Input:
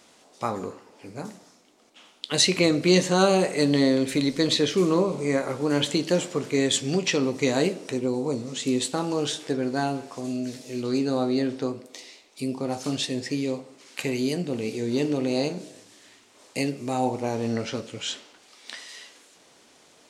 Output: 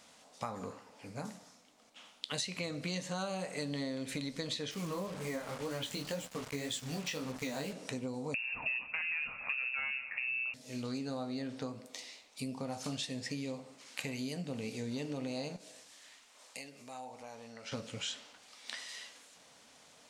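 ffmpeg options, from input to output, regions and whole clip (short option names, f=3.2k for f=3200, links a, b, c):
-filter_complex "[0:a]asettb=1/sr,asplit=3[a][b][c];[a]atrim=end=4.714[d];[b]atrim=start=4.71:end=7.73,asetpts=PTS-STARTPTS,afade=t=in:d=0.004:c=qsin,afade=t=out:st=3.016:d=0.004:c=qsin,flanger=delay=15.5:depth=5.7:speed=1.9,acrusher=bits=5:mix=0:aa=0.5[e];[c]atrim=start=7.726[f];[d][e]acrossfade=d=0.004:c1=hsin:c2=qsin[g];[g][f]acrossfade=d=0.004:c1=qsin:c2=hsin,asettb=1/sr,asplit=3[h][i][j];[h]atrim=end=8.344[k];[i]atrim=start=8.34:end=10.54,asetpts=PTS-STARTPTS,afade=t=in:d=0.004:c=qsin,afade=t=out:st=2.196:d=0.004:c=qsin,aeval=exprs='0.282*sin(PI/2*2.24*val(0)/0.282)':c=same,lowpass=f=2.5k:t=q:w=0.5098,lowpass=f=2.5k:t=q:w=0.6013,lowpass=f=2.5k:t=q:w=0.9,lowpass=f=2.5k:t=q:w=2.563,afreqshift=-2900[l];[j]atrim=start=10.536[m];[k][l]acrossfade=d=0.004:c1=hsin:c2=qsin[n];[n][m]acrossfade=d=0.004:c1=qsin:c2=hsin,asettb=1/sr,asplit=3[o][p][q];[o]atrim=end=15.564[r];[p]atrim=start=15.56:end=17.72,asetpts=PTS-STARTPTS,afade=t=in:d=0.004:c=qsin,afade=t=out:st=2.156:d=0.004:c=qsin,acompressor=threshold=-39dB:ratio=2.5:attack=3.2:release=140:knee=1:detection=peak,equalizer=f=110:t=o:w=3:g=-14.5[s];[q]atrim=start=17.716[t];[r][s]acrossfade=d=0.004:c1=hsin:c2=qsin[u];[u][t]acrossfade=d=0.004:c1=qsin:c2=hsin,equalizer=f=360:t=o:w=0.38:g=-14.5,acompressor=threshold=-32dB:ratio=6,volume=-3.5dB"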